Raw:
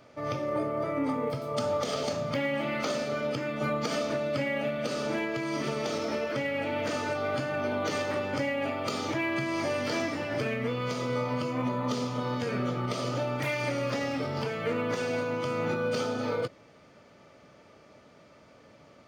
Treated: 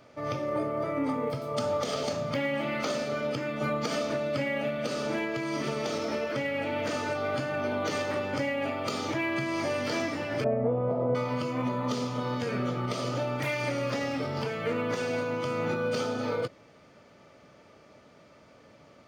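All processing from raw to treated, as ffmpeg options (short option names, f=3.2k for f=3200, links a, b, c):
-filter_complex "[0:a]asettb=1/sr,asplit=3[a][b][c];[a]atrim=end=10.444[d];[b]atrim=start=10.44:end=11.15,asetpts=PTS-STARTPTS,afade=t=in:d=0.004:c=qsin,afade=t=out:st=0.706:d=0.004:c=qsin,lowpass=f=700:t=q:w=3.7,lowshelf=f=63:g=12[e];[c]atrim=start=11.146[f];[d][e]acrossfade=d=0.004:c1=hsin:c2=qsin[g];[g][f]acrossfade=d=0.004:c1=qsin:c2=hsin"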